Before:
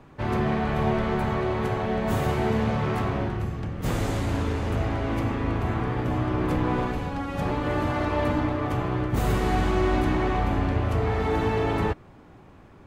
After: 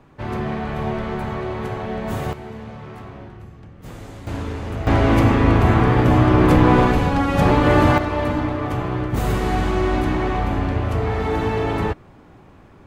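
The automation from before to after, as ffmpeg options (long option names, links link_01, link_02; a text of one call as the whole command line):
ffmpeg -i in.wav -af "asetnsamples=nb_out_samples=441:pad=0,asendcmd='2.33 volume volume -10.5dB;4.27 volume volume -1dB;4.87 volume volume 11.5dB;7.98 volume volume 3dB',volume=-0.5dB" out.wav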